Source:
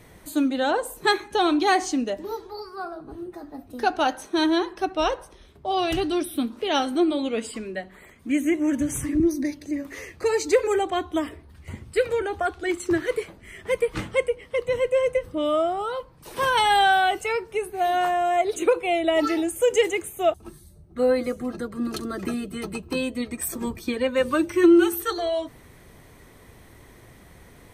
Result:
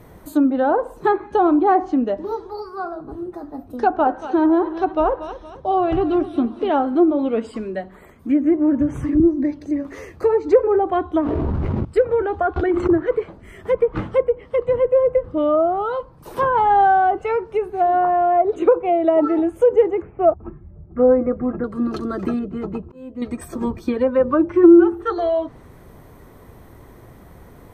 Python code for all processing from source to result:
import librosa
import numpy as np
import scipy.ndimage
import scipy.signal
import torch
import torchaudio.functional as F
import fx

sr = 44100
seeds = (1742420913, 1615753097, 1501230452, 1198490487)

y = fx.chain(x, sr, fx.lowpass(hz=8900.0, slope=24),
    fx.echo_feedback(ms=231, feedback_pct=41, wet_db=-14.5), at=(3.76, 6.71))
y = fx.chain(y, sr, fx.median_filter(points=25),
    fx.peak_eq(hz=70.0, db=-7.5, octaves=0.72),
    fx.env_flatten(amount_pct=100), at=(11.21, 11.85))
y = fx.chain(y, sr, fx.high_shelf(hz=8400.0, db=-7.5),
    fx.pre_swell(db_per_s=34.0), at=(12.56, 13.01))
y = fx.chain(y, sr, fx.highpass(hz=110.0, slope=12),
    fx.high_shelf(hz=7200.0, db=11.0), at=(18.89, 19.39))
y = fx.chain(y, sr, fx.steep_lowpass(hz=2500.0, slope=48),
    fx.low_shelf(hz=200.0, db=4.0), at=(20.02, 21.64))
y = fx.chain(y, sr, fx.auto_swell(attack_ms=596.0),
    fx.high_shelf(hz=2200.0, db=-11.5),
    fx.resample_linear(factor=4), at=(22.39, 23.22))
y = fx.env_lowpass_down(y, sr, base_hz=1200.0, full_db=-18.5)
y = fx.band_shelf(y, sr, hz=4400.0, db=-10.0, octaves=2.9)
y = y * 10.0 ** (6.0 / 20.0)